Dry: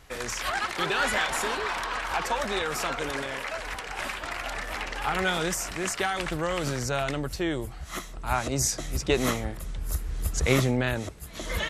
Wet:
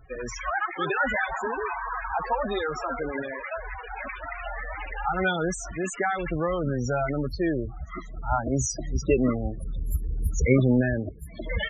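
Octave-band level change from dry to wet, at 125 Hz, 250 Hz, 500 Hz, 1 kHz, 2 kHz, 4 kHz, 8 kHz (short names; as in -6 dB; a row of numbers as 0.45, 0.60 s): +3.0, +4.5, +2.5, +0.5, -1.0, -9.0, -5.0 dB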